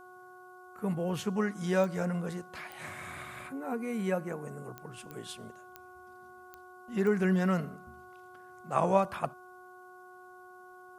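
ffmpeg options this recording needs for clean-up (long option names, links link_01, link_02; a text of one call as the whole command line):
ffmpeg -i in.wav -af "adeclick=threshold=4,bandreject=frequency=365.9:width_type=h:width=4,bandreject=frequency=731.8:width_type=h:width=4,bandreject=frequency=1097.7:width_type=h:width=4,bandreject=frequency=1463.6:width_type=h:width=4" out.wav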